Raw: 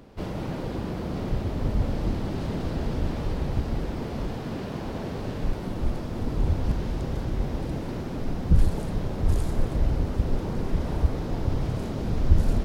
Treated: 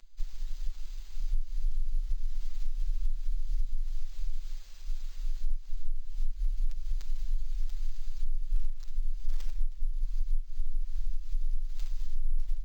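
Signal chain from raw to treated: tracing distortion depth 0.09 ms; inverse Chebyshev band-stop 130–4600 Hz, stop band 80 dB; compressor 8:1, threshold -40 dBFS, peak gain reduction 22.5 dB; comb 6.6 ms, depth 86%; careless resampling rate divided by 4×, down none, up hold; gain +13.5 dB

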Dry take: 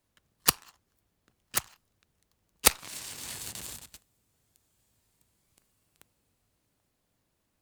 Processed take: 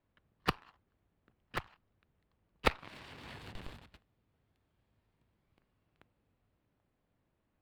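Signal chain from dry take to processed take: in parallel at -3.5 dB: Schmitt trigger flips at -22.5 dBFS; on the sum: air absorption 410 m

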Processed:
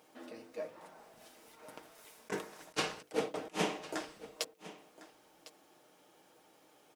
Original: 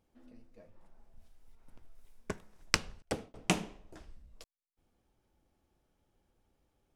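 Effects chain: HPF 360 Hz 12 dB/oct; notches 50/100/150/200/250/300/350/400/450/500 Hz; comb 6.5 ms, depth 40%; negative-ratio compressor -45 dBFS, ratio -0.5; echo 1.054 s -17 dB; gain +9 dB

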